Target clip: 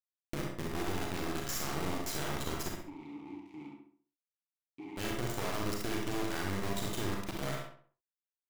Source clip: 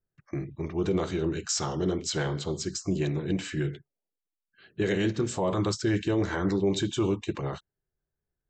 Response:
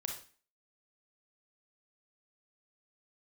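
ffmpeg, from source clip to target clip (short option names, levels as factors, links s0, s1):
-filter_complex "[0:a]adynamicequalizer=threshold=0.0126:dfrequency=360:dqfactor=2.6:tfrequency=360:tqfactor=2.6:attack=5:release=100:ratio=0.375:range=2.5:mode=cutabove:tftype=bell,acompressor=threshold=0.00794:ratio=5,acrusher=bits=4:dc=4:mix=0:aa=0.000001,asplit=3[s0][s1][s2];[s0]afade=t=out:st=2.74:d=0.02[s3];[s1]asplit=3[s4][s5][s6];[s4]bandpass=f=300:t=q:w=8,volume=1[s7];[s5]bandpass=f=870:t=q:w=8,volume=0.501[s8];[s6]bandpass=f=2240:t=q:w=8,volume=0.355[s9];[s7][s8][s9]amix=inputs=3:normalize=0,afade=t=in:st=2.74:d=0.02,afade=t=out:st=4.96:d=0.02[s10];[s2]afade=t=in:st=4.96:d=0.02[s11];[s3][s10][s11]amix=inputs=3:normalize=0,asplit=2[s12][s13];[s13]adelay=66,lowpass=f=2700:p=1,volume=0.668,asplit=2[s14][s15];[s15]adelay=66,lowpass=f=2700:p=1,volume=0.41,asplit=2[s16][s17];[s17]adelay=66,lowpass=f=2700:p=1,volume=0.41,asplit=2[s18][s19];[s19]adelay=66,lowpass=f=2700:p=1,volume=0.41,asplit=2[s20][s21];[s21]adelay=66,lowpass=f=2700:p=1,volume=0.41[s22];[s12][s14][s16][s18][s20][s22]amix=inputs=6:normalize=0[s23];[1:a]atrim=start_sample=2205,atrim=end_sample=6174[s24];[s23][s24]afir=irnorm=-1:irlink=0,volume=2.66"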